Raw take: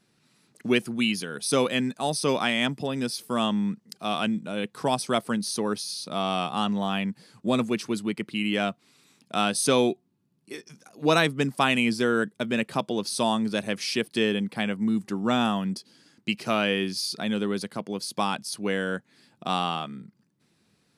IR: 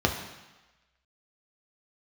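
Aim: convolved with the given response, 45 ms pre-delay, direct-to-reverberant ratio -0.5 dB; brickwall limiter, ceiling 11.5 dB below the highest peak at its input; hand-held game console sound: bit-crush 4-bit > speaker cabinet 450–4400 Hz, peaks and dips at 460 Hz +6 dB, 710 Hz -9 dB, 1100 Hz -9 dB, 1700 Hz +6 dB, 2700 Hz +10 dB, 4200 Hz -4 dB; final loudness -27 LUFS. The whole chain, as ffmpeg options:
-filter_complex "[0:a]alimiter=limit=-18dB:level=0:latency=1,asplit=2[a][b];[1:a]atrim=start_sample=2205,adelay=45[c];[b][c]afir=irnorm=-1:irlink=0,volume=-12.5dB[d];[a][d]amix=inputs=2:normalize=0,acrusher=bits=3:mix=0:aa=0.000001,highpass=450,equalizer=f=460:t=q:w=4:g=6,equalizer=f=710:t=q:w=4:g=-9,equalizer=f=1.1k:t=q:w=4:g=-9,equalizer=f=1.7k:t=q:w=4:g=6,equalizer=f=2.7k:t=q:w=4:g=10,equalizer=f=4.2k:t=q:w=4:g=-4,lowpass=f=4.4k:w=0.5412,lowpass=f=4.4k:w=1.3066,volume=-2.5dB"

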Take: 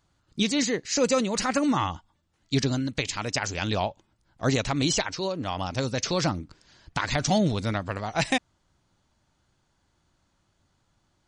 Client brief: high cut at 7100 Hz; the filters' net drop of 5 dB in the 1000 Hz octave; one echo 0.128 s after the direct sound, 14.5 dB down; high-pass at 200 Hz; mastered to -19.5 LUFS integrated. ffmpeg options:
-af "highpass=200,lowpass=7.1k,equalizer=f=1k:t=o:g=-7,aecho=1:1:128:0.188,volume=9.5dB"

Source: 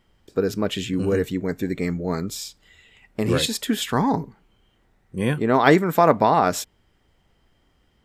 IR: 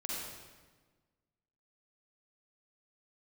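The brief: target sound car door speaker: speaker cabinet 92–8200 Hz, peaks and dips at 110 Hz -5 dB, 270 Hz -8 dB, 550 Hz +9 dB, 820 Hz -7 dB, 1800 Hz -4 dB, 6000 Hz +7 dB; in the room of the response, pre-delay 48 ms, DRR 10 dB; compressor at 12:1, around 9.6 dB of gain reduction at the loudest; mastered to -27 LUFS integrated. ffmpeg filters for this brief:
-filter_complex "[0:a]acompressor=threshold=-19dB:ratio=12,asplit=2[a][b];[1:a]atrim=start_sample=2205,adelay=48[c];[b][c]afir=irnorm=-1:irlink=0,volume=-12dB[d];[a][d]amix=inputs=2:normalize=0,highpass=92,equalizer=f=110:t=q:w=4:g=-5,equalizer=f=270:t=q:w=4:g=-8,equalizer=f=550:t=q:w=4:g=9,equalizer=f=820:t=q:w=4:g=-7,equalizer=f=1.8k:t=q:w=4:g=-4,equalizer=f=6k:t=q:w=4:g=7,lowpass=f=8.2k:w=0.5412,lowpass=f=8.2k:w=1.3066,volume=-1dB"

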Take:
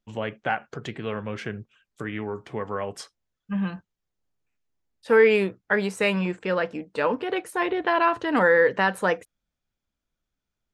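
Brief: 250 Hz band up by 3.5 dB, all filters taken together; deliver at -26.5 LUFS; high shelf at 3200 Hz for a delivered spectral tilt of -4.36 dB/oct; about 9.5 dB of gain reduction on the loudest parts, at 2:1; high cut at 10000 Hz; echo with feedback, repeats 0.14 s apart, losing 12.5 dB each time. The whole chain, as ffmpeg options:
-af "lowpass=10k,equalizer=f=250:t=o:g=5,highshelf=f=3.2k:g=3,acompressor=threshold=-29dB:ratio=2,aecho=1:1:140|280|420:0.237|0.0569|0.0137,volume=3.5dB"

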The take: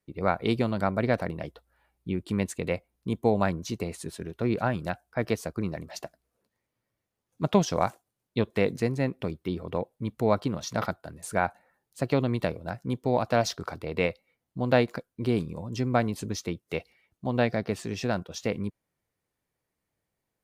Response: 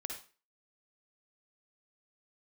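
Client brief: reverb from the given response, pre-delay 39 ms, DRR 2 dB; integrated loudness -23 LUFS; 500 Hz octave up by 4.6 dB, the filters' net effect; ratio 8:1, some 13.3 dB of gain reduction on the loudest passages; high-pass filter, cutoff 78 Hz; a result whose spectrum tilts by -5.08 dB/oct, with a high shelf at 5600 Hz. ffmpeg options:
-filter_complex "[0:a]highpass=78,equalizer=f=500:t=o:g=5.5,highshelf=f=5.6k:g=6,acompressor=threshold=-28dB:ratio=8,asplit=2[a][b];[1:a]atrim=start_sample=2205,adelay=39[c];[b][c]afir=irnorm=-1:irlink=0,volume=-1dB[d];[a][d]amix=inputs=2:normalize=0,volume=10dB"

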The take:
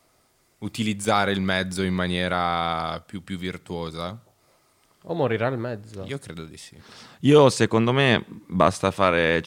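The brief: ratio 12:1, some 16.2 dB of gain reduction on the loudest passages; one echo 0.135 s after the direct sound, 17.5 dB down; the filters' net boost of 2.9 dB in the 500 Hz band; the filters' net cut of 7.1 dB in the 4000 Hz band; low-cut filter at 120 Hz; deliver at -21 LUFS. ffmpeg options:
-af "highpass=120,equalizer=f=500:t=o:g=3.5,equalizer=f=4k:t=o:g=-9,acompressor=threshold=-24dB:ratio=12,aecho=1:1:135:0.133,volume=10dB"

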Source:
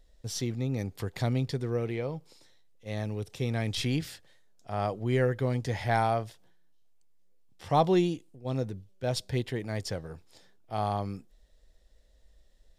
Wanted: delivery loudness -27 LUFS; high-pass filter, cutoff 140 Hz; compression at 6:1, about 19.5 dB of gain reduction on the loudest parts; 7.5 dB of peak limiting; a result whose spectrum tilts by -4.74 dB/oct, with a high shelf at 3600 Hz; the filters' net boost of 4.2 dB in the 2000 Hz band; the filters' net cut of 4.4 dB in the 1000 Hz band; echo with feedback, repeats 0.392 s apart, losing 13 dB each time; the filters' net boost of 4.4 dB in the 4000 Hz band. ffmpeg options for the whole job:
-af "highpass=140,equalizer=f=1k:t=o:g=-8,equalizer=f=2k:t=o:g=7,highshelf=f=3.6k:g=-4,equalizer=f=4k:t=o:g=6.5,acompressor=threshold=-43dB:ratio=6,alimiter=level_in=10.5dB:limit=-24dB:level=0:latency=1,volume=-10.5dB,aecho=1:1:392|784|1176:0.224|0.0493|0.0108,volume=21dB"

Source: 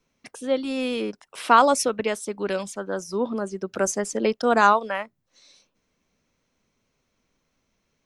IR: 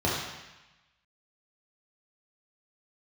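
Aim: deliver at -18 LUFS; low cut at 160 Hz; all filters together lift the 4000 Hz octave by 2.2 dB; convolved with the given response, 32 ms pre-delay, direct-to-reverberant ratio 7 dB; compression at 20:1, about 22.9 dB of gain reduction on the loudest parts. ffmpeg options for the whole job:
-filter_complex "[0:a]highpass=160,equalizer=f=4k:t=o:g=3,acompressor=threshold=-32dB:ratio=20,asplit=2[a][b];[1:a]atrim=start_sample=2205,adelay=32[c];[b][c]afir=irnorm=-1:irlink=0,volume=-20dB[d];[a][d]amix=inputs=2:normalize=0,volume=18dB"

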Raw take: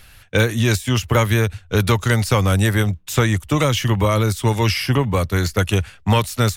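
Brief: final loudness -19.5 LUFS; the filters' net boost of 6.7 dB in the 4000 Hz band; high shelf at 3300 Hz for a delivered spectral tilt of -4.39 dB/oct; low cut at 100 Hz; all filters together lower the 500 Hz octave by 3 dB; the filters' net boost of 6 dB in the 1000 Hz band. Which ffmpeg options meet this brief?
-af "highpass=100,equalizer=f=500:t=o:g=-5.5,equalizer=f=1k:t=o:g=7.5,highshelf=f=3.3k:g=5.5,equalizer=f=4k:t=o:g=4.5,volume=-2dB"

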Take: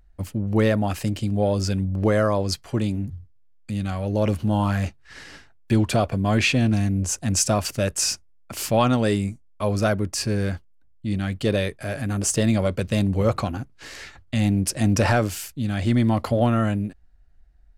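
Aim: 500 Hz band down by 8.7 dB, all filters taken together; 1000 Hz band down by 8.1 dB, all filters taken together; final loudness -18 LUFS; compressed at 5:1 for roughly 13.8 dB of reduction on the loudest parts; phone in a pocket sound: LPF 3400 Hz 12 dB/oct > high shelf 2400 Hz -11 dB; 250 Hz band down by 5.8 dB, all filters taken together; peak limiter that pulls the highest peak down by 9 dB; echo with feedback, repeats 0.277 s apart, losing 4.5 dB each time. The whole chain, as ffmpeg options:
-af "equalizer=f=250:t=o:g=-5.5,equalizer=f=500:t=o:g=-7,equalizer=f=1k:t=o:g=-6,acompressor=threshold=-35dB:ratio=5,alimiter=level_in=6dB:limit=-24dB:level=0:latency=1,volume=-6dB,lowpass=3.4k,highshelf=f=2.4k:g=-11,aecho=1:1:277|554|831|1108|1385|1662|1939|2216|2493:0.596|0.357|0.214|0.129|0.0772|0.0463|0.0278|0.0167|0.01,volume=22dB"

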